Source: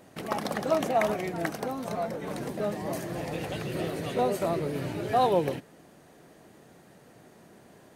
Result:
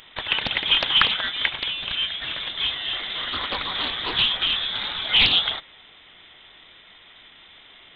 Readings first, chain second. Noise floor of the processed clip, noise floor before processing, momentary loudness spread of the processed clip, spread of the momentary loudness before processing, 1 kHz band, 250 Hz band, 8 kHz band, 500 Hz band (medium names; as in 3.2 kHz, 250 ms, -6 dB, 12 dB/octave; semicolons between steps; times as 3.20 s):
-50 dBFS, -55 dBFS, 10 LU, 9 LU, -2.0 dB, -9.0 dB, under -15 dB, -12.0 dB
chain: tilt shelf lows -7.5 dB, about 1.2 kHz; frequency inversion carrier 3.8 kHz; loudspeaker Doppler distortion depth 0.7 ms; trim +9 dB